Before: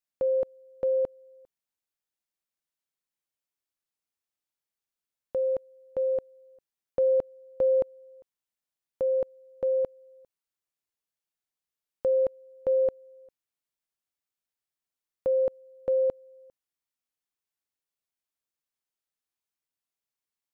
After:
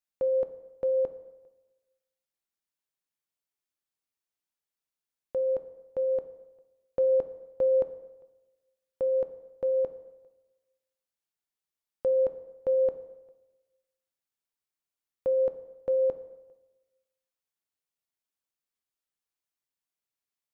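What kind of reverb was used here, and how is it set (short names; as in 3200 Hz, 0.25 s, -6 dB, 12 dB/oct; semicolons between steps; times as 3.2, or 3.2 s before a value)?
plate-style reverb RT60 1.1 s, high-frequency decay 0.75×, pre-delay 0 ms, DRR 10 dB; gain -2 dB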